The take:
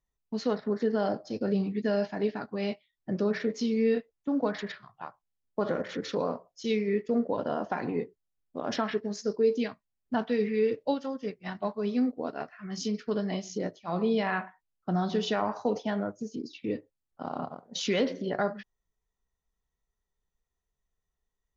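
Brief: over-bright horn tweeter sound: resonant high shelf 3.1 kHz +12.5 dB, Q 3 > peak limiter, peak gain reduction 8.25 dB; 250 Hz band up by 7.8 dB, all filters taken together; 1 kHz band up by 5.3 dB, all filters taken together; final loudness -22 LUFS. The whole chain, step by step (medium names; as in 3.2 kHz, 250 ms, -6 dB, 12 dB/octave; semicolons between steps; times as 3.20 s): peaking EQ 250 Hz +9 dB; peaking EQ 1 kHz +8 dB; resonant high shelf 3.1 kHz +12.5 dB, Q 3; trim +4 dB; peak limiter -10.5 dBFS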